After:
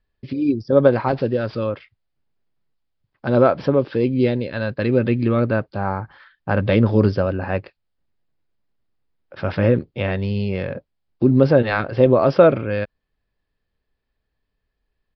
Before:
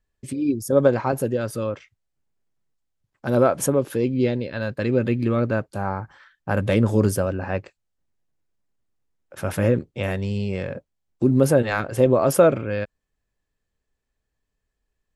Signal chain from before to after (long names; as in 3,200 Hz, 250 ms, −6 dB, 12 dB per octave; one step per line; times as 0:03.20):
0:01.08–0:01.59: variable-slope delta modulation 64 kbit/s
downsampling to 11,025 Hz
level +3 dB